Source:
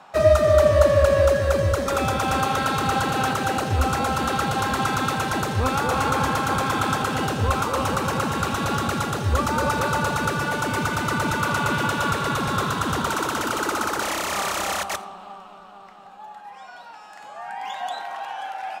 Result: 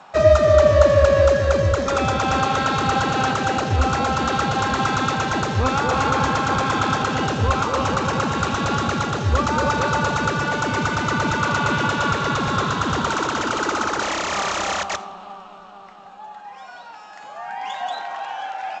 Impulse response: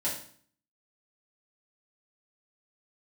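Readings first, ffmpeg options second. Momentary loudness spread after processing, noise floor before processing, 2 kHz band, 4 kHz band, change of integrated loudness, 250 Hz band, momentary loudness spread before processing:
15 LU, -44 dBFS, +2.5 dB, +2.5 dB, +2.5 dB, +2.5 dB, 15 LU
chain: -af "volume=1.33" -ar 16000 -c:a g722

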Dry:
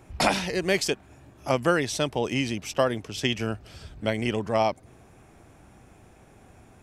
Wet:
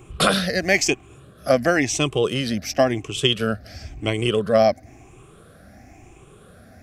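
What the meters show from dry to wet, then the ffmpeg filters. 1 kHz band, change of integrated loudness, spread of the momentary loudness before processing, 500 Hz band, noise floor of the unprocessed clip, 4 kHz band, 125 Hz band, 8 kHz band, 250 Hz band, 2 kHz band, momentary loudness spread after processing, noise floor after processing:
+3.0 dB, +5.5 dB, 9 LU, +6.0 dB, -54 dBFS, +7.0 dB, +5.0 dB, +7.5 dB, +5.0 dB, +6.0 dB, 10 LU, -49 dBFS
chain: -af "afftfilt=real='re*pow(10,13/40*sin(2*PI*(0.68*log(max(b,1)*sr/1024/100)/log(2)-(0.97)*(pts-256)/sr)))':imag='im*pow(10,13/40*sin(2*PI*(0.68*log(max(b,1)*sr/1024/100)/log(2)-(0.97)*(pts-256)/sr)))':win_size=1024:overlap=0.75,asuperstop=centerf=910:order=4:qfactor=5,volume=1.58"

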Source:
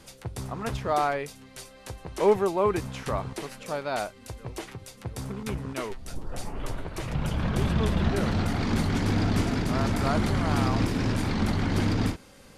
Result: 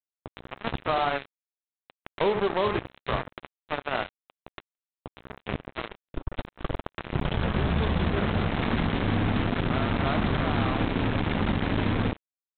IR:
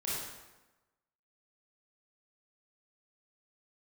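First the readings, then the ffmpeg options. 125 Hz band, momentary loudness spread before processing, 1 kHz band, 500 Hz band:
-1.5 dB, 15 LU, +0.5 dB, -1.5 dB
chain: -af "aecho=1:1:25|69:0.211|0.376,aresample=8000,acrusher=bits=3:mix=0:aa=0.5,aresample=44100,acompressor=threshold=0.0631:ratio=6,volume=1.41"

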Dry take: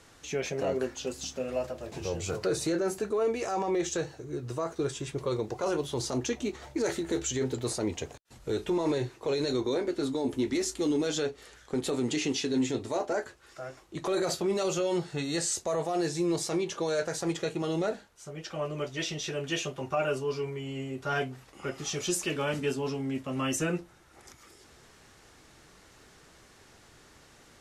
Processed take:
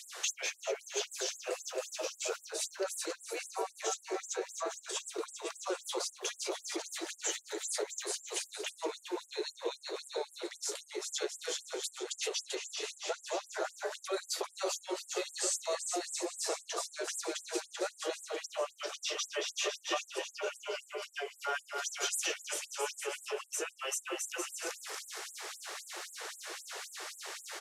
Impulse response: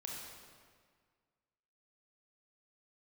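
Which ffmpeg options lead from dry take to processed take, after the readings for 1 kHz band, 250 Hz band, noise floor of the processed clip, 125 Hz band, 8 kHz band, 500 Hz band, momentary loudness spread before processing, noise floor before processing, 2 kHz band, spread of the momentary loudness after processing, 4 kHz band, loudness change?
-4.0 dB, -15.5 dB, -61 dBFS, under -40 dB, +1.0 dB, -8.0 dB, 8 LU, -57 dBFS, -2.0 dB, 7 LU, 0.0 dB, -6.0 dB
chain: -filter_complex "[0:a]asplit=2[s0][s1];[s1]alimiter=level_in=1.78:limit=0.0631:level=0:latency=1,volume=0.562,volume=1.26[s2];[s0][s2]amix=inputs=2:normalize=0,aecho=1:1:390|663|854.1|987.9|1082:0.631|0.398|0.251|0.158|0.1,acompressor=threshold=0.0178:ratio=10,afftfilt=real='re*gte(b*sr/1024,320*pow(7400/320,0.5+0.5*sin(2*PI*3.8*pts/sr)))':imag='im*gte(b*sr/1024,320*pow(7400/320,0.5+0.5*sin(2*PI*3.8*pts/sr)))':win_size=1024:overlap=0.75,volume=2.11"

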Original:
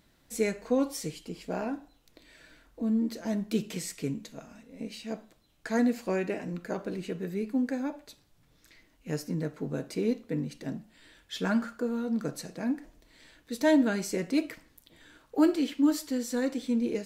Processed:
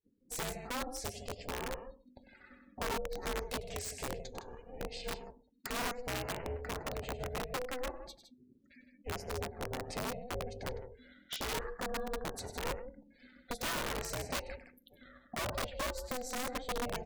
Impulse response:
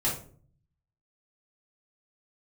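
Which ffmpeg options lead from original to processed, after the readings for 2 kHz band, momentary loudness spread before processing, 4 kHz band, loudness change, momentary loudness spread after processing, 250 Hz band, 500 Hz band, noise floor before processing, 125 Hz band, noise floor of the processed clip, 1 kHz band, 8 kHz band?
-2.0 dB, 15 LU, +1.0 dB, -9.0 dB, 15 LU, -18.5 dB, -7.5 dB, -66 dBFS, -6.0 dB, -67 dBFS, +0.5 dB, -1.0 dB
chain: -filter_complex "[0:a]asplit=2[s0][s1];[1:a]atrim=start_sample=2205,asetrate=52920,aresample=44100[s2];[s1][s2]afir=irnorm=-1:irlink=0,volume=0.0299[s3];[s0][s3]amix=inputs=2:normalize=0,adynamicequalizer=threshold=0.00631:dfrequency=340:dqfactor=3.3:tfrequency=340:tqfactor=3.3:attack=5:release=100:ratio=0.375:range=1.5:mode=cutabove:tftype=bell,acompressor=threshold=0.0126:ratio=3,afftdn=nr=36:nf=-52,aecho=1:1:99.13|160.3:0.282|0.316,aeval=exprs='(mod(39.8*val(0)+1,2)-1)/39.8':c=same,aeval=exprs='val(0)*sin(2*PI*250*n/s)':c=same,volume=1.5"

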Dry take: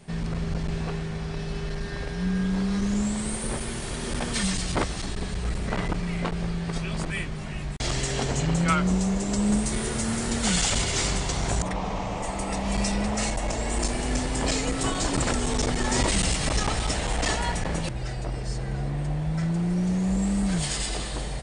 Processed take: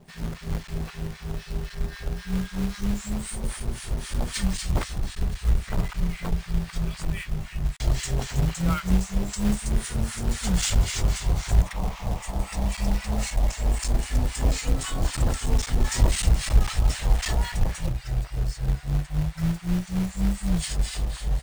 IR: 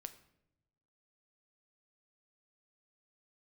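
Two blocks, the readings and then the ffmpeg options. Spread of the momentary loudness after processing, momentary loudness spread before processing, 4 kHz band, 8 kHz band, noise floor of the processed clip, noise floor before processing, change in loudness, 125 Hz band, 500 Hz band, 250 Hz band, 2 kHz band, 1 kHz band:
9 LU, 8 LU, -4.0 dB, -4.0 dB, -43 dBFS, -32 dBFS, -0.5 dB, +2.0 dB, -6.0 dB, -3.5 dB, -4.5 dB, -6.0 dB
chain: -filter_complex "[0:a]acrossover=split=1100[s0][s1];[s0]aeval=exprs='val(0)*(1-1/2+1/2*cos(2*PI*3.8*n/s))':c=same[s2];[s1]aeval=exprs='val(0)*(1-1/2-1/2*cos(2*PI*3.8*n/s))':c=same[s3];[s2][s3]amix=inputs=2:normalize=0,acrusher=bits=3:mode=log:mix=0:aa=0.000001,asubboost=boost=3.5:cutoff=130"

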